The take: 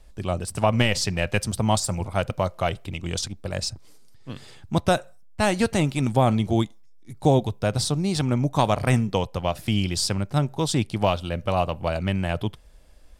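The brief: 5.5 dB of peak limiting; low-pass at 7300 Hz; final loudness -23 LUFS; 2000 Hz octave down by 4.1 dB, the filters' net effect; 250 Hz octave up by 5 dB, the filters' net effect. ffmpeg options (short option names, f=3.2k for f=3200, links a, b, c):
-af "lowpass=7.3k,equalizer=f=250:t=o:g=6.5,equalizer=f=2k:t=o:g=-5.5,volume=1dB,alimiter=limit=-9.5dB:level=0:latency=1"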